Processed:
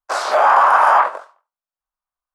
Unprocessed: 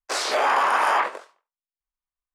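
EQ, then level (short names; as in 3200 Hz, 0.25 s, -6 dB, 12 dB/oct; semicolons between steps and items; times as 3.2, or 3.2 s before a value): band shelf 930 Hz +11.5 dB; -2.5 dB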